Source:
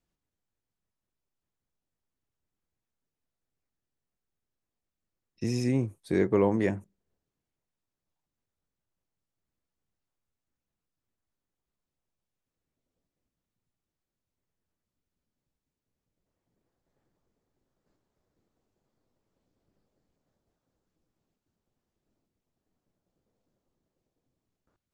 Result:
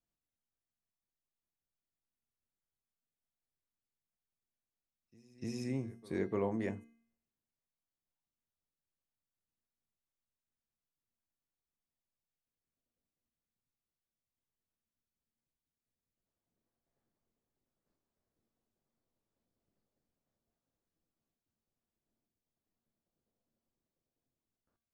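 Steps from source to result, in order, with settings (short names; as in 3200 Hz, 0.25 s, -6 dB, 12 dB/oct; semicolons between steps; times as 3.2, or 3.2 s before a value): notches 60/120/180/240/300/360/420/480 Hz; resonator 230 Hz, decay 0.65 s, harmonics odd, mix 70%; pre-echo 0.298 s -23 dB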